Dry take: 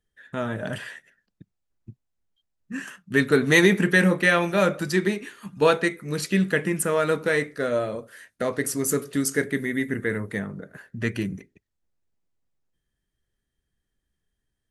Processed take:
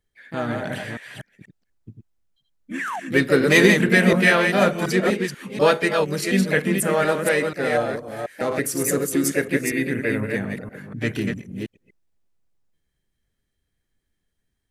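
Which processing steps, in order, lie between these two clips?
reverse delay 0.243 s, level -4.5 dB; painted sound fall, 2.79–3, 640–2100 Hz -30 dBFS; harmoniser +4 st -7 dB; gain +1 dB

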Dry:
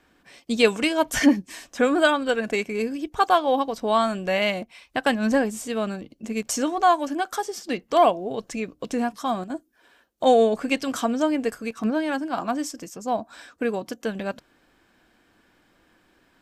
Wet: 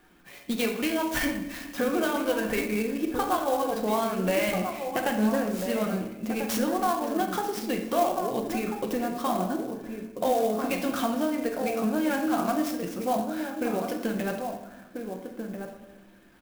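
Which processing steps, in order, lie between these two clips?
bin magnitudes rounded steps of 15 dB; LPF 6500 Hz 12 dB/oct; compressor, threshold -27 dBFS, peak gain reduction 14.5 dB; outdoor echo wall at 230 m, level -6 dB; shoebox room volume 400 m³, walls mixed, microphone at 0.9 m; clock jitter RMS 0.034 ms; gain +1.5 dB

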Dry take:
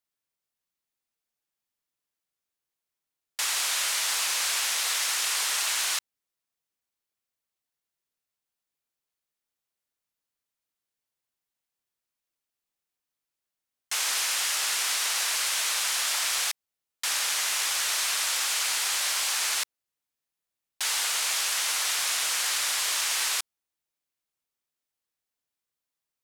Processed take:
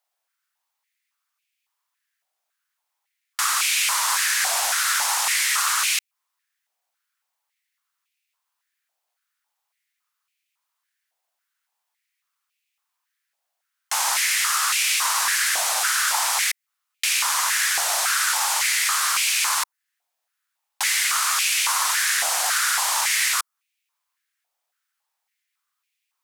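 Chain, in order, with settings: dynamic EQ 2800 Hz, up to -7 dB, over -44 dBFS, Q 0.73; stepped high-pass 3.6 Hz 720–2400 Hz; gain +6.5 dB

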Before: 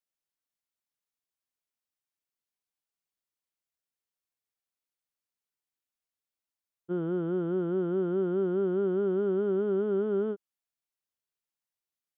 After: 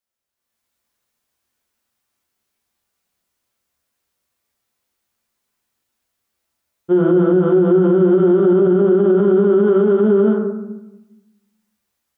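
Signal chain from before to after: AGC gain up to 11 dB; reverb RT60 1.0 s, pre-delay 6 ms, DRR -0.5 dB; maximiser +9.5 dB; gain -5.5 dB

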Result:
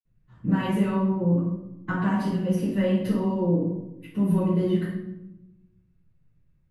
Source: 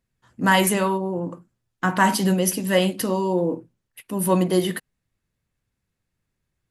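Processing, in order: tone controls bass +8 dB, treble -11 dB; compressor, threshold -23 dBFS, peak gain reduction 11.5 dB; reverb RT60 0.90 s, pre-delay 46 ms; gain -1.5 dB

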